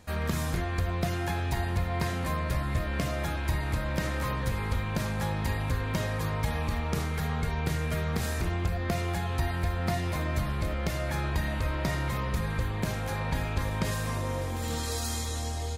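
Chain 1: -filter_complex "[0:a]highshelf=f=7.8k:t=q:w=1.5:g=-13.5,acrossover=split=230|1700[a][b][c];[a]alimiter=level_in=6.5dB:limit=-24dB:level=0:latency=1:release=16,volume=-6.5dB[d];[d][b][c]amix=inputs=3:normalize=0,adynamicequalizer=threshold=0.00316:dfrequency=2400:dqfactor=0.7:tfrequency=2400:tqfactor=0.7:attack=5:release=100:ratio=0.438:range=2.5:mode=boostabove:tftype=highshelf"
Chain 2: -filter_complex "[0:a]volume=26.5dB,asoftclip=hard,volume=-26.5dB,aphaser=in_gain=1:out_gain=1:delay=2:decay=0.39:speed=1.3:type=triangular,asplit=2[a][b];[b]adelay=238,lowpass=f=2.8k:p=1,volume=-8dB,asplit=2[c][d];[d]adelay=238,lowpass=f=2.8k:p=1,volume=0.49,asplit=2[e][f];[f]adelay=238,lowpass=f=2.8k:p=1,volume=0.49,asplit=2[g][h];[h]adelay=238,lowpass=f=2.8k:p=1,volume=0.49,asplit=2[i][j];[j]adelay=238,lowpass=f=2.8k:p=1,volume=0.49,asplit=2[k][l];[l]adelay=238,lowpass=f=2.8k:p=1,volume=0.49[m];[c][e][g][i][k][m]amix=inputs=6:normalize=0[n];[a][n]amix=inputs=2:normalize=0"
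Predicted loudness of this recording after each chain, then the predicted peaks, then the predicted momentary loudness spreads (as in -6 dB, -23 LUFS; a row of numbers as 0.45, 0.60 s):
-31.5, -29.0 LUFS; -13.5, -18.5 dBFS; 2, 3 LU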